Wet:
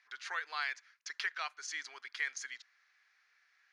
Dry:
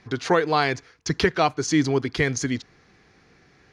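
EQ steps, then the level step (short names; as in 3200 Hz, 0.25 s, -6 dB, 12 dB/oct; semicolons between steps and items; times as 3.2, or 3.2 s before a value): ladder high-pass 1300 Hz, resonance 35%; tilt -4 dB/oct; high shelf 3900 Hz +11.5 dB; -4.5 dB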